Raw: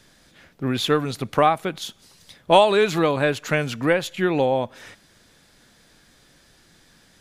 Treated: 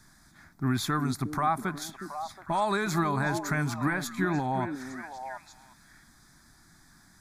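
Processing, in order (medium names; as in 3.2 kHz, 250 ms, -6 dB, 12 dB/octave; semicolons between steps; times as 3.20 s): peak limiter -12.5 dBFS, peak gain reduction 11 dB; static phaser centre 1.2 kHz, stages 4; repeats whose band climbs or falls 362 ms, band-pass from 280 Hz, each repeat 1.4 oct, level -4.5 dB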